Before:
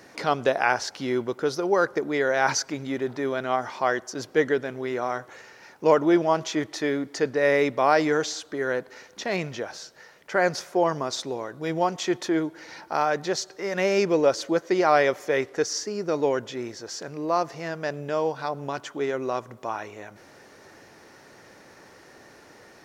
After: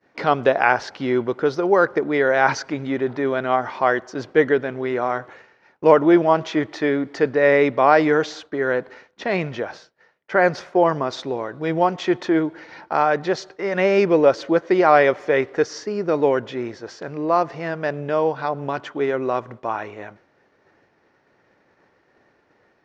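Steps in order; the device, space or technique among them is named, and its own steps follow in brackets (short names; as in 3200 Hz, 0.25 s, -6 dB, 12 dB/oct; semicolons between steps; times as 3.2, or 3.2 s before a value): hearing-loss simulation (LPF 3000 Hz 12 dB/oct; expander -40 dBFS); gain +5.5 dB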